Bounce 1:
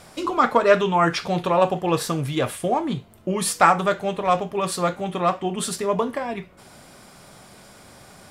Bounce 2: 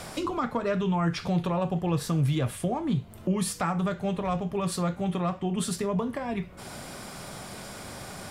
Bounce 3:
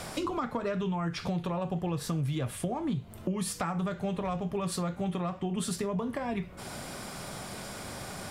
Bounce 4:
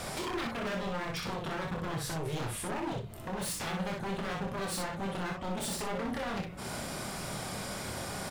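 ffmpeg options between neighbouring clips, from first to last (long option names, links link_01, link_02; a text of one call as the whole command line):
ffmpeg -i in.wav -filter_complex "[0:a]acrossover=split=190[link_01][link_02];[link_02]acompressor=threshold=-46dB:ratio=2[link_03];[link_01][link_03]amix=inputs=2:normalize=0,asplit=2[link_04][link_05];[link_05]alimiter=level_in=4.5dB:limit=-24dB:level=0:latency=1:release=229,volume=-4.5dB,volume=2.5dB[link_06];[link_04][link_06]amix=inputs=2:normalize=0" out.wav
ffmpeg -i in.wav -af "acompressor=threshold=-28dB:ratio=6" out.wav
ffmpeg -i in.wav -filter_complex "[0:a]aeval=exprs='0.0251*(abs(mod(val(0)/0.0251+3,4)-2)-1)':channel_layout=same,asplit=2[link_01][link_02];[link_02]aecho=0:1:26|61:0.562|0.631[link_03];[link_01][link_03]amix=inputs=2:normalize=0" out.wav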